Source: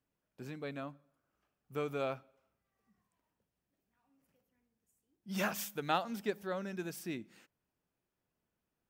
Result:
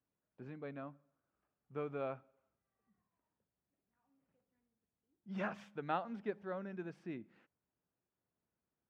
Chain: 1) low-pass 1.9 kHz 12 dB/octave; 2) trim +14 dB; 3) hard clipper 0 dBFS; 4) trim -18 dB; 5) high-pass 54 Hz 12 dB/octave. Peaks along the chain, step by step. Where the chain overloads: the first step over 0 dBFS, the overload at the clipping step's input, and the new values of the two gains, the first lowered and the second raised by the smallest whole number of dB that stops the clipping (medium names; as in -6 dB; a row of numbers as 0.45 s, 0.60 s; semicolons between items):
-19.5 dBFS, -5.5 dBFS, -5.5 dBFS, -23.5 dBFS, -23.5 dBFS; nothing clips